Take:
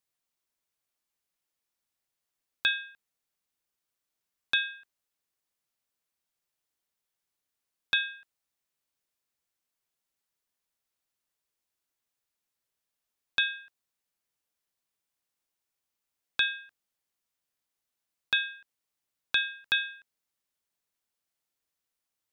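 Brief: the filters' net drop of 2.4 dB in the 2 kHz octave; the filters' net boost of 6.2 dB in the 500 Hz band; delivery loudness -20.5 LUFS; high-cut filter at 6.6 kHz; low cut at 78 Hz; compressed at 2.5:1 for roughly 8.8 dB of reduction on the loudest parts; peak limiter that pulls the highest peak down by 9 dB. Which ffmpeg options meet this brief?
-af "highpass=78,lowpass=6600,equalizer=f=500:t=o:g=8,equalizer=f=2000:t=o:g=-4,acompressor=threshold=0.0141:ratio=2.5,volume=14.1,alimiter=limit=0.841:level=0:latency=1"

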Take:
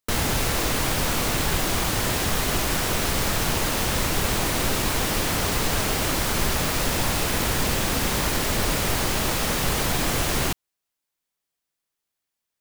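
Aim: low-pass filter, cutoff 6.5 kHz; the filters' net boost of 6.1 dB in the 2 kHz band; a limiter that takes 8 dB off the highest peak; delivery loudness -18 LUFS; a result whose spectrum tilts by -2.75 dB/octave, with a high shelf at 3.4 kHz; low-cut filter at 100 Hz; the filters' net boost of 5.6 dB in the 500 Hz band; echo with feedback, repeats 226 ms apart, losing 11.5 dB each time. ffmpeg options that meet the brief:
-af "highpass=100,lowpass=6500,equalizer=f=500:t=o:g=6.5,equalizer=f=2000:t=o:g=6,highshelf=f=3400:g=4,alimiter=limit=0.15:level=0:latency=1,aecho=1:1:226|452|678:0.266|0.0718|0.0194,volume=2.11"

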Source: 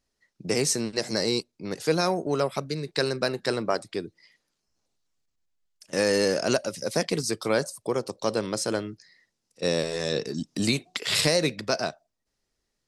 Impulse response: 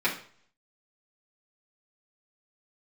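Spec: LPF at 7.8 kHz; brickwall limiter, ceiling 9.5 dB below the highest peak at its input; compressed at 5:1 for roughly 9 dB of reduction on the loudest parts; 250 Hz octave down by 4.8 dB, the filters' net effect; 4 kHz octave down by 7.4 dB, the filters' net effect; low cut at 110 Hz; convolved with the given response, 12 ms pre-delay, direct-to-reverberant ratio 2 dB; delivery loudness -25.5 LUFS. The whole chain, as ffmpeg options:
-filter_complex "[0:a]highpass=110,lowpass=7800,equalizer=f=250:t=o:g=-6.5,equalizer=f=4000:t=o:g=-9,acompressor=threshold=0.0282:ratio=5,alimiter=level_in=1.26:limit=0.0631:level=0:latency=1,volume=0.794,asplit=2[s0][s1];[1:a]atrim=start_sample=2205,adelay=12[s2];[s1][s2]afir=irnorm=-1:irlink=0,volume=0.2[s3];[s0][s3]amix=inputs=2:normalize=0,volume=3.76"

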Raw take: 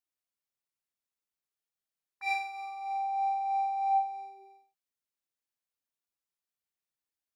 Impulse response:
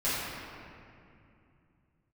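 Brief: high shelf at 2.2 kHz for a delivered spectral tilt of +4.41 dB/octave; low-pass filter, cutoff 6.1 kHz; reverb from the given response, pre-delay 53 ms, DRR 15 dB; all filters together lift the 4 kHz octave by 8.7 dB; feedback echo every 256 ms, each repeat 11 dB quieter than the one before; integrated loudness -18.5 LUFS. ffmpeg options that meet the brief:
-filter_complex "[0:a]lowpass=6100,highshelf=f=2200:g=5.5,equalizer=f=4000:t=o:g=5.5,aecho=1:1:256|512|768:0.282|0.0789|0.0221,asplit=2[s0][s1];[1:a]atrim=start_sample=2205,adelay=53[s2];[s1][s2]afir=irnorm=-1:irlink=0,volume=0.0501[s3];[s0][s3]amix=inputs=2:normalize=0,volume=4.22"

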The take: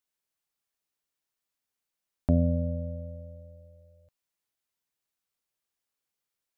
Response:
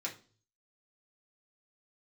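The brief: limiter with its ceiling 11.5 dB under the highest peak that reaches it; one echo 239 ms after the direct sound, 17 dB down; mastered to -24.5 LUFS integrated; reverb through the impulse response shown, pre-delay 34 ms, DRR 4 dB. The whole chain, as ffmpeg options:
-filter_complex "[0:a]alimiter=level_in=1.12:limit=0.0631:level=0:latency=1,volume=0.891,aecho=1:1:239:0.141,asplit=2[s0][s1];[1:a]atrim=start_sample=2205,adelay=34[s2];[s1][s2]afir=irnorm=-1:irlink=0,volume=0.562[s3];[s0][s3]amix=inputs=2:normalize=0,volume=3.98"

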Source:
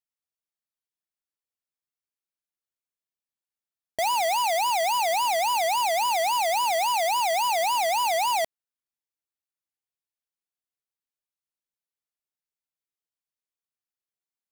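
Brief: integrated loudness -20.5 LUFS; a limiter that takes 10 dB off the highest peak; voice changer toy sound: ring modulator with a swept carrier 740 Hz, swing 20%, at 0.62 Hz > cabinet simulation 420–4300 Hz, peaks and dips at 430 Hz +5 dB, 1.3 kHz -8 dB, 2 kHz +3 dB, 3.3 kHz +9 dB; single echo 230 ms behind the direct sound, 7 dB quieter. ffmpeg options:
-af "alimiter=level_in=2.99:limit=0.0631:level=0:latency=1,volume=0.335,aecho=1:1:230:0.447,aeval=exprs='val(0)*sin(2*PI*740*n/s+740*0.2/0.62*sin(2*PI*0.62*n/s))':c=same,highpass=420,equalizer=f=430:t=q:w=4:g=5,equalizer=f=1300:t=q:w=4:g=-8,equalizer=f=2000:t=q:w=4:g=3,equalizer=f=3300:t=q:w=4:g=9,lowpass=f=4300:w=0.5412,lowpass=f=4300:w=1.3066,volume=5.96"

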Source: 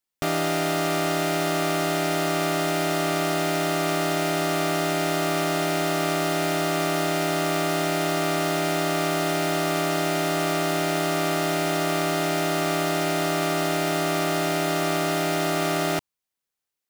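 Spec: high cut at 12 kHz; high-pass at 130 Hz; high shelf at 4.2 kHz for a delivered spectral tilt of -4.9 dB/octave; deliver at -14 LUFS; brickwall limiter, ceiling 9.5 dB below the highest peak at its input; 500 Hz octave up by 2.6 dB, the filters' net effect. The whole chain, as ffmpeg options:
-af "highpass=130,lowpass=12000,equalizer=f=500:t=o:g=4,highshelf=f=4200:g=-6.5,volume=5.01,alimiter=limit=0.531:level=0:latency=1"

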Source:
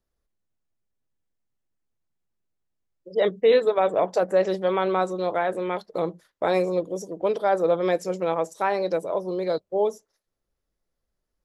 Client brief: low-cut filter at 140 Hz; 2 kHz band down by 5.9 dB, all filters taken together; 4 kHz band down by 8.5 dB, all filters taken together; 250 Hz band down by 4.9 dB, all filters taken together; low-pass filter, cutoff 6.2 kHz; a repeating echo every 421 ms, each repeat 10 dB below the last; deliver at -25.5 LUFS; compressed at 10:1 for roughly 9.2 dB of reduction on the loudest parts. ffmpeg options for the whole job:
-af "highpass=140,lowpass=6200,equalizer=f=250:t=o:g=-8.5,equalizer=f=2000:t=o:g=-6,equalizer=f=4000:t=o:g=-7.5,acompressor=threshold=0.0501:ratio=10,aecho=1:1:421|842|1263|1684:0.316|0.101|0.0324|0.0104,volume=2.11"

